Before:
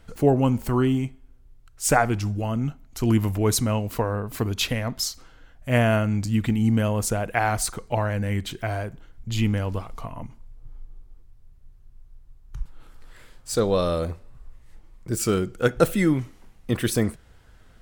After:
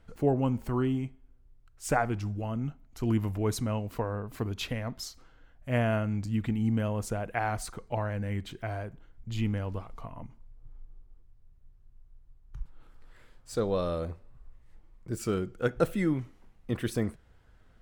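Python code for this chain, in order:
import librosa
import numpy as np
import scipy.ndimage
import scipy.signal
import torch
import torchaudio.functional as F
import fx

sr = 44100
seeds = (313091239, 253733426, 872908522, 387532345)

y = fx.high_shelf(x, sr, hz=3700.0, db=-8.5)
y = F.gain(torch.from_numpy(y), -7.0).numpy()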